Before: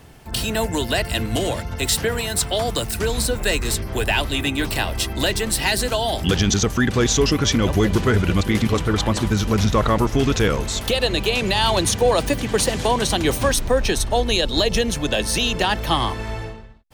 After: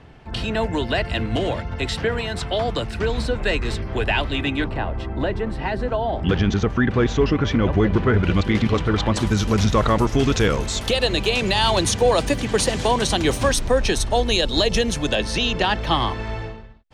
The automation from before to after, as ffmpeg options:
-af "asetnsamples=n=441:p=0,asendcmd='4.64 lowpass f 1300;6.23 lowpass f 2200;8.23 lowpass f 4100;9.16 lowpass f 9100;15.15 lowpass f 4700',lowpass=3.2k"

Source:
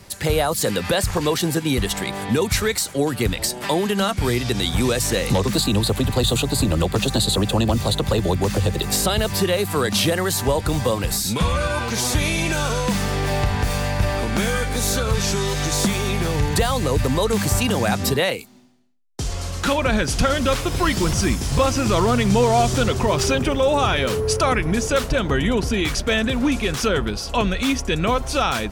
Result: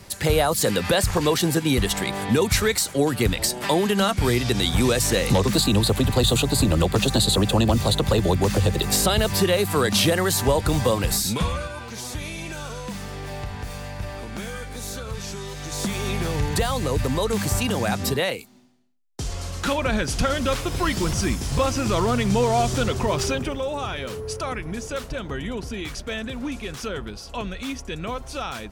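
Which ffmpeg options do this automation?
-af "volume=8dB,afade=t=out:st=11.18:d=0.53:silence=0.266073,afade=t=in:st=15.63:d=0.46:silence=0.398107,afade=t=out:st=23.16:d=0.53:silence=0.473151"

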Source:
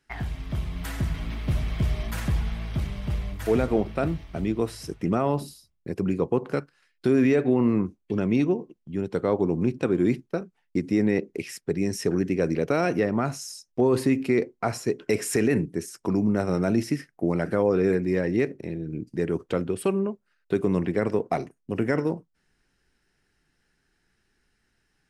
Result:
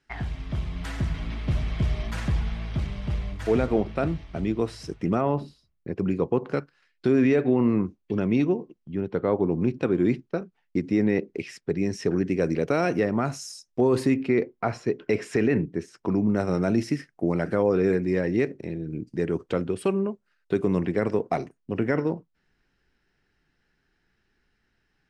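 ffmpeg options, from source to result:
-af "asetnsamples=n=441:p=0,asendcmd='5.21 lowpass f 2800;5.99 lowpass f 5500;8.95 lowpass f 2900;9.52 lowpass f 5000;12.29 lowpass f 9100;14.14 lowpass f 3600;16.3 lowpass f 7600;21.57 lowpass f 4500',lowpass=6.6k"

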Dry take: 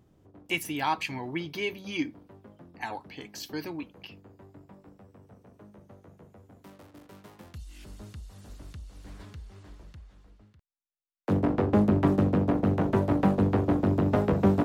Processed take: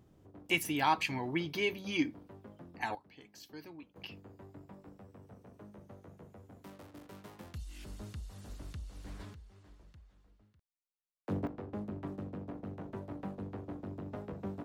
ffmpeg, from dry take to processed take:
-af "asetnsamples=n=441:p=0,asendcmd='2.95 volume volume -13.5dB;3.96 volume volume -1dB;9.34 volume volume -10dB;11.47 volume volume -18.5dB',volume=-1dB"

